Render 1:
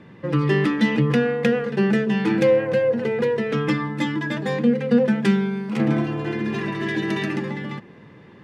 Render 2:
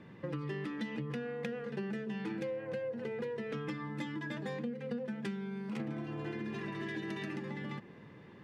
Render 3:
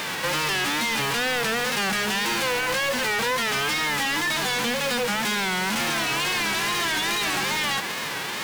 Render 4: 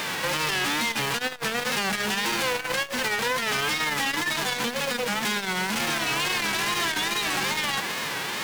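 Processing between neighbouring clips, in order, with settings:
compression 6:1, threshold -29 dBFS, peak gain reduction 16 dB; trim -7.5 dB
formants flattened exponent 0.3; overdrive pedal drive 31 dB, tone 4.8 kHz, clips at -22 dBFS; wow and flutter 110 cents; trim +5 dB
transformer saturation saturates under 400 Hz

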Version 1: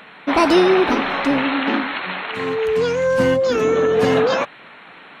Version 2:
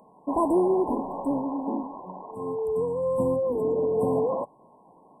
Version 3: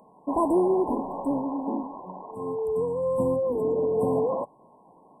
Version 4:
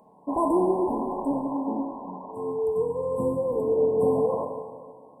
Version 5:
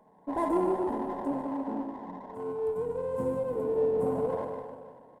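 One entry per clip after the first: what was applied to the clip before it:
FFT band-reject 1.1–7.6 kHz; trim -8 dB
no audible change
plate-style reverb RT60 1.8 s, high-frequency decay 0.9×, DRR 3 dB; trim -1.5 dB
feedback delay 149 ms, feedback 48%, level -10 dB; sliding maximum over 5 samples; trim -5 dB

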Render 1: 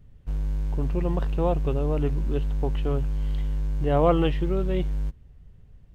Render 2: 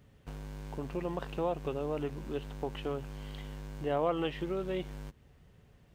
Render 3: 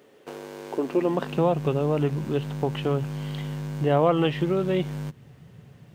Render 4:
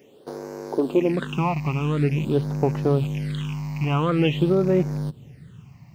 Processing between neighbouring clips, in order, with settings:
compression 6:1, threshold -29 dBFS, peak gain reduction 13.5 dB; high-pass 410 Hz 6 dB/octave; trim +5 dB
high-pass sweep 390 Hz -> 130 Hz, 0.70–1.61 s; trim +9 dB
rattle on loud lows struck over -29 dBFS, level -29 dBFS; phase shifter stages 8, 0.47 Hz, lowest notch 450–3200 Hz; trim +4 dB

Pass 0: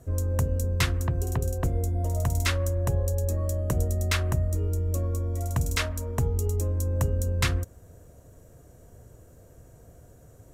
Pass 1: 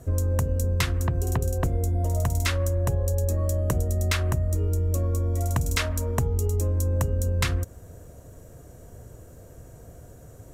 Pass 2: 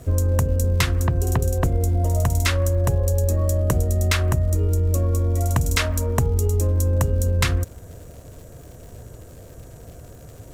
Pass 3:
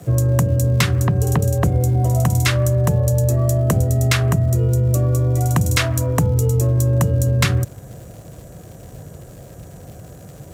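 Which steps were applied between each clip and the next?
compression, threshold -26 dBFS, peak gain reduction 7.5 dB; trim +5.5 dB
crackle 210 per s -44 dBFS; trim +4.5 dB
frequency shift +36 Hz; trim +3 dB

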